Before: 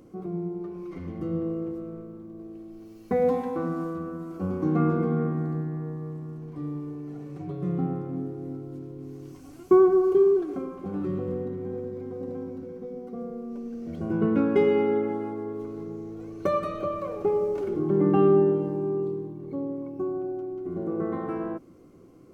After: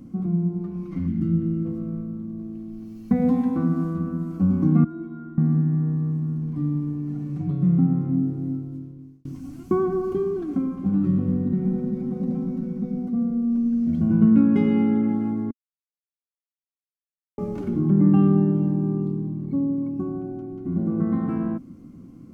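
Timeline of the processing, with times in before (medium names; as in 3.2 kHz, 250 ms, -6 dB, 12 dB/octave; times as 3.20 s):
1.07–1.66 s: time-frequency box 350–1200 Hz -13 dB
4.84–5.38 s: inharmonic resonator 330 Hz, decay 0.21 s, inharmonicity 0.008
8.33–9.25 s: fade out
11.52–13.08 s: comb 5.4 ms, depth 98%
15.51–17.38 s: mute
whole clip: resonant low shelf 310 Hz +9 dB, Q 3; compression 1.5:1, threshold -20 dBFS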